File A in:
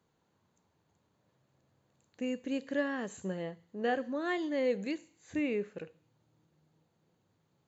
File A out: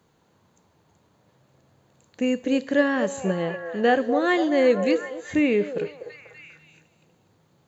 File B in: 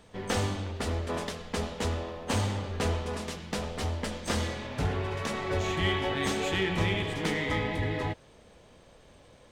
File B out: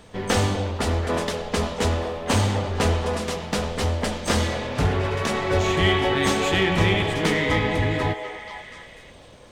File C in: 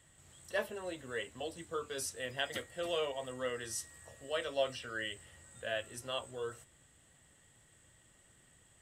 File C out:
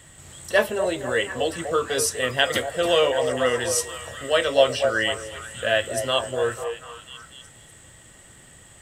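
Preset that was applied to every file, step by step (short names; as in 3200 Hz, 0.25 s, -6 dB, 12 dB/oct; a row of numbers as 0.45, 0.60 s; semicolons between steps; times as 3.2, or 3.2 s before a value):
delay with a stepping band-pass 0.245 s, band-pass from 580 Hz, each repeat 0.7 oct, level -5.5 dB; match loudness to -23 LUFS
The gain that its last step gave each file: +11.5, +8.0, +16.0 dB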